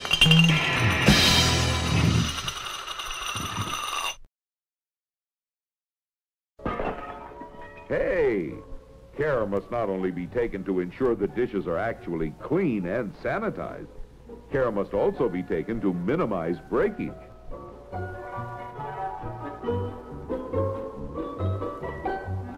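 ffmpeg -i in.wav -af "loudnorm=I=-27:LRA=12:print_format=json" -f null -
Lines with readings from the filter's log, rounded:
"input_i" : "-26.4",
"input_tp" : "-4.5",
"input_lra" : "11.6",
"input_thresh" : "-37.0",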